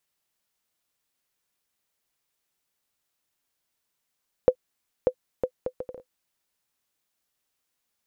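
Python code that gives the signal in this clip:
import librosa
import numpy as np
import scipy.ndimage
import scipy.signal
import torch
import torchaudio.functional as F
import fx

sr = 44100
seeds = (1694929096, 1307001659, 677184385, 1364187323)

y = fx.bouncing_ball(sr, first_gap_s=0.59, ratio=0.62, hz=507.0, decay_ms=72.0, level_db=-6.0)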